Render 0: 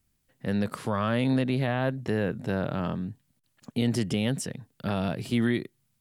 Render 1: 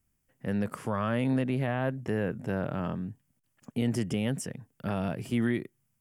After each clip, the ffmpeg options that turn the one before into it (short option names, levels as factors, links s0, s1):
-af "equalizer=f=4000:w=3.2:g=-13.5,volume=0.75"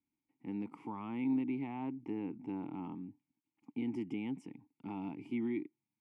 -filter_complex "[0:a]asplit=3[s0][s1][s2];[s0]bandpass=f=300:t=q:w=8,volume=1[s3];[s1]bandpass=f=870:t=q:w=8,volume=0.501[s4];[s2]bandpass=f=2240:t=q:w=8,volume=0.355[s5];[s3][s4][s5]amix=inputs=3:normalize=0,volume=1.5"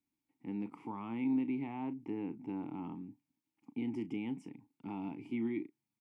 -filter_complex "[0:a]asplit=2[s0][s1];[s1]adelay=35,volume=0.211[s2];[s0][s2]amix=inputs=2:normalize=0"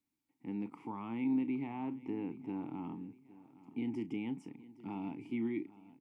-af "aecho=1:1:815|1630|2445:0.119|0.0464|0.0181"